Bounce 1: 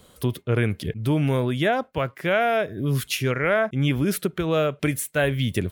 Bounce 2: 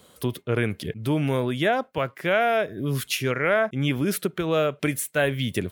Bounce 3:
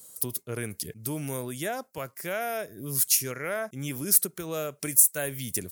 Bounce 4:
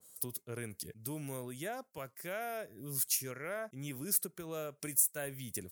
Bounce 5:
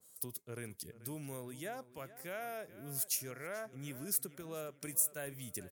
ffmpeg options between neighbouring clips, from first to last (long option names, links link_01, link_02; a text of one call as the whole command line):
ffmpeg -i in.wav -af "highpass=frequency=160:poles=1" out.wav
ffmpeg -i in.wav -af "aexciter=amount=12.6:drive=2.2:freq=4900,volume=-10dB" out.wav
ffmpeg -i in.wav -af "adynamicequalizer=threshold=0.00562:dfrequency=2500:dqfactor=0.7:tfrequency=2500:tqfactor=0.7:attack=5:release=100:ratio=0.375:range=2:mode=cutabove:tftype=highshelf,volume=-8.5dB" out.wav
ffmpeg -i in.wav -filter_complex "[0:a]asplit=2[link_01][link_02];[link_02]adelay=435,lowpass=frequency=4600:poles=1,volume=-16dB,asplit=2[link_03][link_04];[link_04]adelay=435,lowpass=frequency=4600:poles=1,volume=0.43,asplit=2[link_05][link_06];[link_06]adelay=435,lowpass=frequency=4600:poles=1,volume=0.43,asplit=2[link_07][link_08];[link_08]adelay=435,lowpass=frequency=4600:poles=1,volume=0.43[link_09];[link_01][link_03][link_05][link_07][link_09]amix=inputs=5:normalize=0,volume=-3dB" out.wav